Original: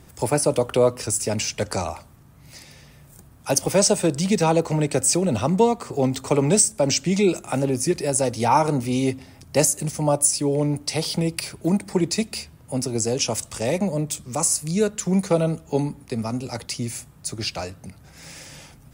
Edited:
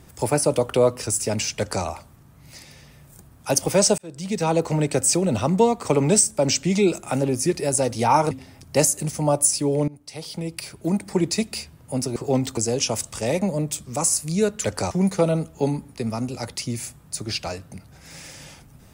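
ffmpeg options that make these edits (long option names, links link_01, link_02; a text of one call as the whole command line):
ffmpeg -i in.wav -filter_complex "[0:a]asplit=9[link_01][link_02][link_03][link_04][link_05][link_06][link_07][link_08][link_09];[link_01]atrim=end=3.98,asetpts=PTS-STARTPTS,afade=type=out:start_time=3.976:duration=0.004:curve=hsin[link_10];[link_02]atrim=start=3.98:end=5.852,asetpts=PTS-STARTPTS,afade=type=in:duration=0.68[link_11];[link_03]atrim=start=6.258:end=8.722[link_12];[link_04]atrim=start=9.108:end=10.68,asetpts=PTS-STARTPTS,afade=type=out:start_time=1.568:duration=0.004:curve=hsin:silence=0.0794328[link_13];[link_05]atrim=start=10.68:end=12.962,asetpts=PTS-STARTPTS,afade=type=in:duration=1.33:silence=0.0794328[link_14];[link_06]atrim=start=5.848:end=6.262[link_15];[link_07]atrim=start=12.958:end=15.032[link_16];[link_08]atrim=start=1.578:end=1.852[link_17];[link_09]atrim=start=15.028[link_18];[link_10][link_11]concat=n=2:v=0:a=1[link_19];[link_19][link_12]acrossfade=duration=0.004:curve1=hsin:curve2=hsin[link_20];[link_13][link_14]concat=n=2:v=0:a=1[link_21];[link_20][link_21]acrossfade=duration=0.004:curve1=hsin:curve2=hsin[link_22];[link_22][link_15]acrossfade=duration=0.004:curve1=hsin:curve2=hsin[link_23];[link_23][link_16]acrossfade=duration=0.004:curve1=hsin:curve2=hsin[link_24];[link_24][link_17]acrossfade=duration=0.004:curve1=hsin:curve2=hsin[link_25];[link_25][link_18]acrossfade=duration=0.004:curve1=hsin:curve2=hsin" out.wav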